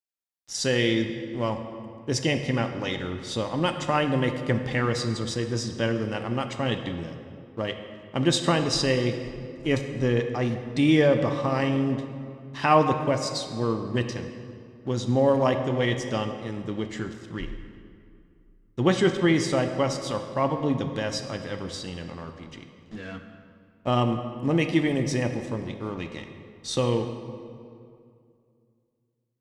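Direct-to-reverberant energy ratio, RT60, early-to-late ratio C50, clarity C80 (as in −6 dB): 6.0 dB, 2.4 s, 7.5 dB, 9.0 dB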